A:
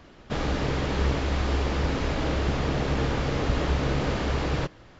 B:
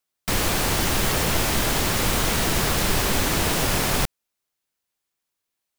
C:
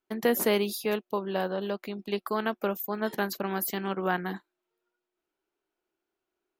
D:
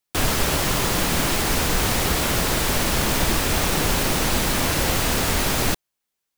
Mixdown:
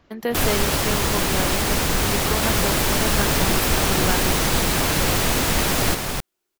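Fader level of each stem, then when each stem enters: -7.5 dB, -4.0 dB, 0.0 dB, 0.0 dB; 0.00 s, 2.15 s, 0.00 s, 0.20 s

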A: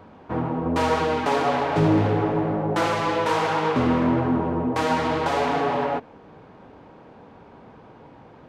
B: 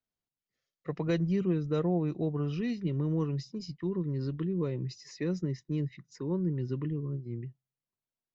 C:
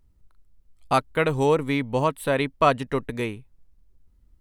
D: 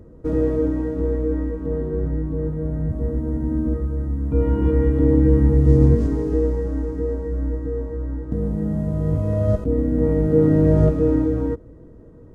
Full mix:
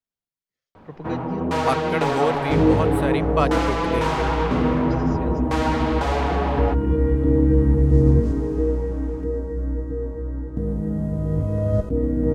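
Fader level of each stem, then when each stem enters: -1.0 dB, -3.5 dB, -3.0 dB, -1.5 dB; 0.75 s, 0.00 s, 0.75 s, 2.25 s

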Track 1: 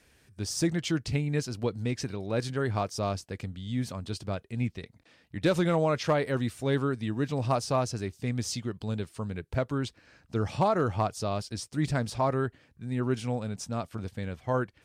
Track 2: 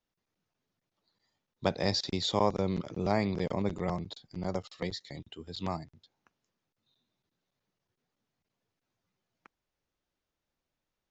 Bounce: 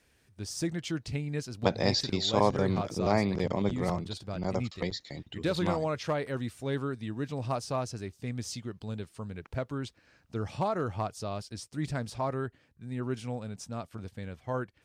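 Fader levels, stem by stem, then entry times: -5.0 dB, +2.0 dB; 0.00 s, 0.00 s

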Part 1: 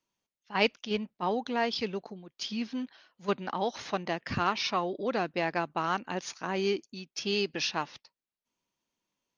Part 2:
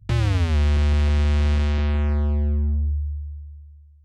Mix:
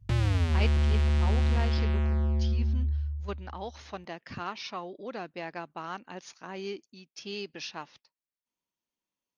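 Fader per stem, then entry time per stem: -8.0 dB, -5.5 dB; 0.00 s, 0.00 s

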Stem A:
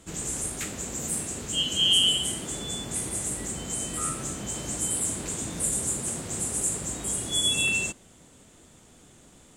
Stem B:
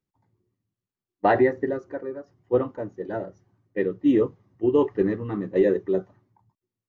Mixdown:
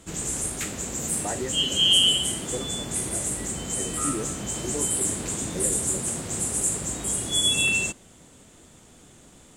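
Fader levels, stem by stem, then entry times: +2.5 dB, -13.5 dB; 0.00 s, 0.00 s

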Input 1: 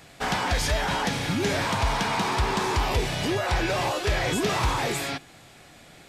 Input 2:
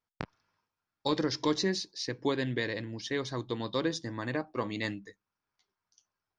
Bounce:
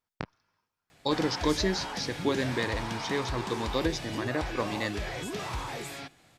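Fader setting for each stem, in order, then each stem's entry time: -10.5 dB, +1.5 dB; 0.90 s, 0.00 s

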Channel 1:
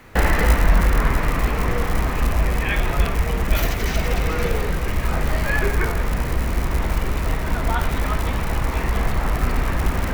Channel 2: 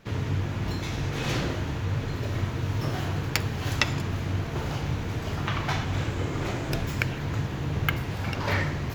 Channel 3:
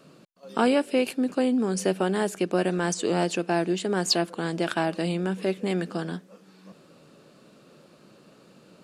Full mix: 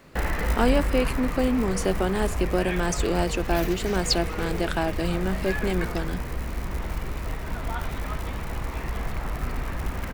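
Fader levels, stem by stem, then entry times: -9.0 dB, -19.0 dB, -0.5 dB; 0.00 s, 2.15 s, 0.00 s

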